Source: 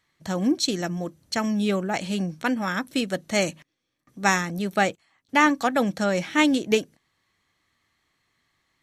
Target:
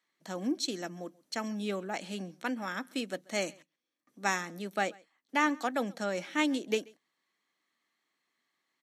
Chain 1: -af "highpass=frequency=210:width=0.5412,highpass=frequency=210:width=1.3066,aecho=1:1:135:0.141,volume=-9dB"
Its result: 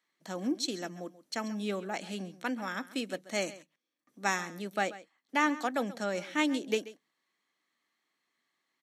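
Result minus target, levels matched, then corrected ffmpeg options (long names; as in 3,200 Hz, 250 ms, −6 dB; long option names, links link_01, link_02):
echo-to-direct +8.5 dB
-af "highpass=frequency=210:width=0.5412,highpass=frequency=210:width=1.3066,aecho=1:1:135:0.0531,volume=-9dB"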